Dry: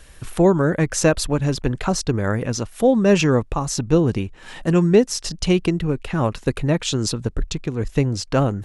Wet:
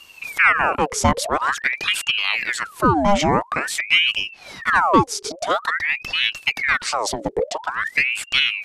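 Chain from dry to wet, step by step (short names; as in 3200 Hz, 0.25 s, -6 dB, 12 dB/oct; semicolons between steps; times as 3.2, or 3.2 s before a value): 5.32–5.72 graphic EQ 250/500/1000/2000/4000 Hz -10/+7/-11/+7/-8 dB; ring modulator with a swept carrier 1600 Hz, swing 75%, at 0.48 Hz; gain +2 dB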